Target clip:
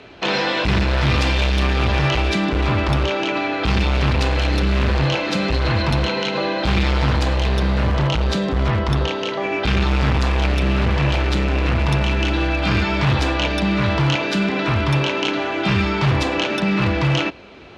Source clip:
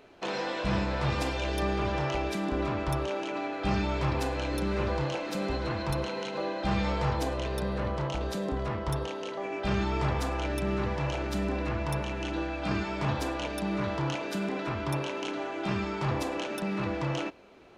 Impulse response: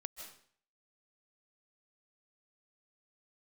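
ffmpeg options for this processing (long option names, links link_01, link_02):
-filter_complex "[0:a]acrossover=split=130|1100[link_01][link_02][link_03];[link_02]alimiter=level_in=3.5dB:limit=-24dB:level=0:latency=1,volume=-3.5dB[link_04];[link_01][link_04][link_03]amix=inputs=3:normalize=0,aemphasis=mode=reproduction:type=bsi,asoftclip=type=hard:threshold=-21.5dB,highpass=67,equalizer=frequency=3800:width_type=o:width=2.6:gain=12,volume=8.5dB"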